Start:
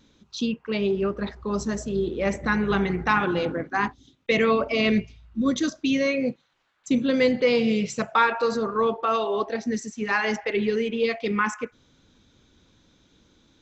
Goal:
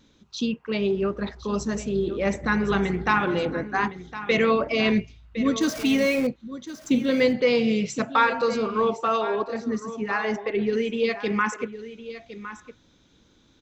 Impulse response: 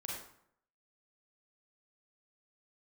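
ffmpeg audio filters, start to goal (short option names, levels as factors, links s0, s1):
-filter_complex "[0:a]asettb=1/sr,asplit=3[s0][s1][s2];[s0]atrim=end=5.614[s3];[s1]atrim=start=5.61:end=6.27,asetpts=PTS-STARTPTS,afade=t=in:d=0.004:c=qsin,afade=t=out:st=0.656:d=0.004:c=qsin,aeval=exprs='val(0)+0.5*0.0316*sgn(val(0))':c=same[s4];[s2]atrim=start=6.266[s5];[s3][s4]acrossfade=d=0.004:c1=hsin:c2=qsin[s6];[s6][s5]acrossfade=d=0.004:c1=qsin:c2=hsin,asettb=1/sr,asplit=3[s7][s8][s9];[s7]atrim=end=9.214[s10];[s8]atrim=start=9.21:end=10.73,asetpts=PTS-STARTPTS,afade=t=in:d=0.004:c=qsin,afade=t=out:st=1.516:d=0.004:c=qsin,highshelf=f=2100:g=-9[s11];[s9]atrim=start=10.726[s12];[s10][s11]acrossfade=d=0.004:c1=hsin:c2=qsin[s13];[s13][s12]acrossfade=d=0.004:c1=qsin:c2=hsin,aecho=1:1:1060:0.211"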